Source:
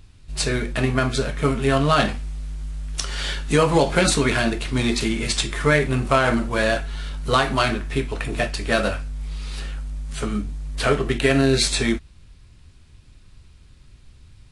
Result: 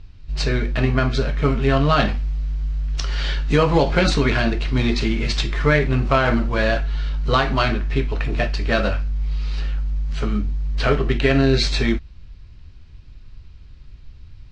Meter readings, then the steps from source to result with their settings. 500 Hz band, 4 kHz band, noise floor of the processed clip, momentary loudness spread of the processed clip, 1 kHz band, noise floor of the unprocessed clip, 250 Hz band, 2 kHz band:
+0.5 dB, -1.0 dB, -42 dBFS, 9 LU, 0.0 dB, -49 dBFS, +1.0 dB, 0.0 dB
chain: LPF 5400 Hz 24 dB/oct; low shelf 79 Hz +10 dB; notch 3500 Hz, Q 23

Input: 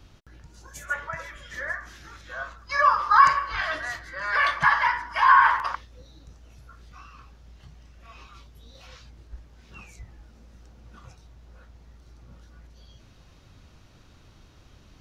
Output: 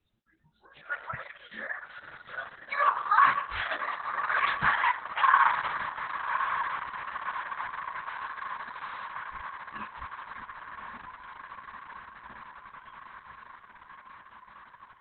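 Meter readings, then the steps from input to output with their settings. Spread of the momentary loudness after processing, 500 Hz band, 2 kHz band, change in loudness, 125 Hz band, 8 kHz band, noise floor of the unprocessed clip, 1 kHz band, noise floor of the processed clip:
23 LU, -5.0 dB, -4.0 dB, -7.5 dB, -7.5 dB, n/a, -54 dBFS, -4.5 dB, -58 dBFS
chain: spectral noise reduction 23 dB; bell 220 Hz +15 dB 0.31 oct; flange 0.76 Hz, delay 6.2 ms, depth 9.2 ms, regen +43%; on a send: diffused feedback echo 1.142 s, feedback 74%, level -9 dB; on the sum: Opus 6 kbps 48000 Hz

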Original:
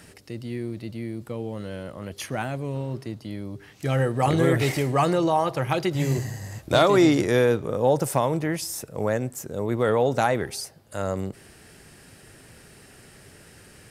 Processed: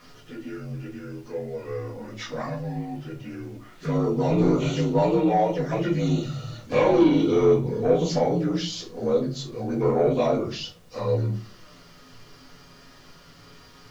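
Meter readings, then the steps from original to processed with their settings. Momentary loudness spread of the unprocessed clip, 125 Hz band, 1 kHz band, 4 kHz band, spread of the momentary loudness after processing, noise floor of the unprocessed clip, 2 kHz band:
15 LU, -0.5 dB, -3.0 dB, -2.0 dB, 17 LU, -51 dBFS, -7.0 dB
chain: inharmonic rescaling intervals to 83%; bell 230 Hz -3 dB 0.49 oct; envelope flanger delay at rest 8.5 ms, full sweep at -22.5 dBFS; added noise pink -63 dBFS; soft clip -16.5 dBFS, distortion -18 dB; shoebox room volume 150 m³, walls furnished, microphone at 1.9 m

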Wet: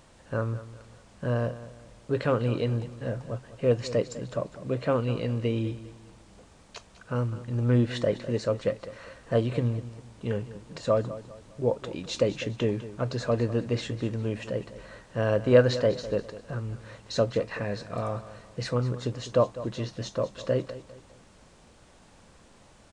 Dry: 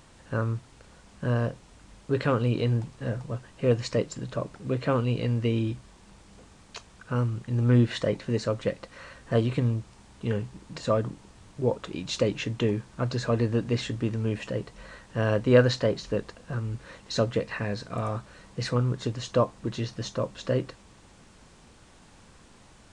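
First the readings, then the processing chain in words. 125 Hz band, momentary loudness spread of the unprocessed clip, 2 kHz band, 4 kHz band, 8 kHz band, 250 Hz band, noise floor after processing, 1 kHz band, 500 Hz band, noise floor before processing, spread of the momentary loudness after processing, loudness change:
-2.5 dB, 12 LU, -2.0 dB, -2.5 dB, -2.5 dB, -2.0 dB, -56 dBFS, -1.0 dB, +1.0 dB, -54 dBFS, 15 LU, -0.5 dB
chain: bell 580 Hz +5 dB 0.69 oct; feedback echo 0.202 s, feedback 36%, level -15 dB; gain -2.5 dB

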